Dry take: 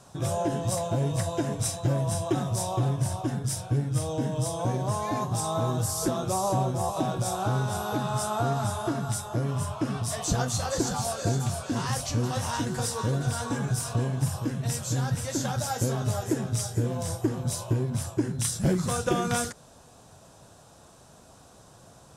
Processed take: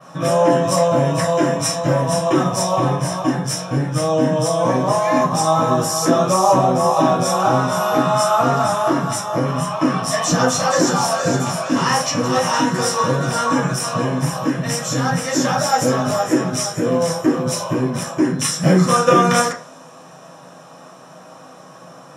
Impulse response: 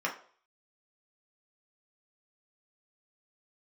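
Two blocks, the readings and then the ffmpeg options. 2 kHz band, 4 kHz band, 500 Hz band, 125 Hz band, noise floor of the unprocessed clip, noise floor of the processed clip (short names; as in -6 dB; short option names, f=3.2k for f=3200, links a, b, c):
+14.0 dB, +12.0 dB, +14.0 dB, +4.5 dB, -53 dBFS, -42 dBFS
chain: -filter_complex "[0:a]adynamicequalizer=threshold=0.00562:dfrequency=7200:dqfactor=0.9:tfrequency=7200:tqfactor=0.9:attack=5:release=100:ratio=0.375:range=2.5:mode=boostabove:tftype=bell[a];[1:a]atrim=start_sample=2205[b];[a][b]afir=irnorm=-1:irlink=0,volume=7dB"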